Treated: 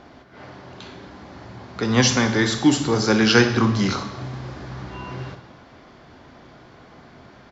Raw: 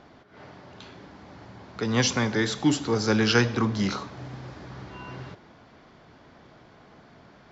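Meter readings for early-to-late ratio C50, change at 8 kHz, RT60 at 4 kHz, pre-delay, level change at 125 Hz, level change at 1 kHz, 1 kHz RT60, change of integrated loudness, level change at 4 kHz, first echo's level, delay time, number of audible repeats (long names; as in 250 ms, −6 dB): 10.0 dB, can't be measured, 1.1 s, 3 ms, +5.0 dB, +5.5 dB, 1.1 s, +5.0 dB, +6.0 dB, −14.0 dB, 64 ms, 1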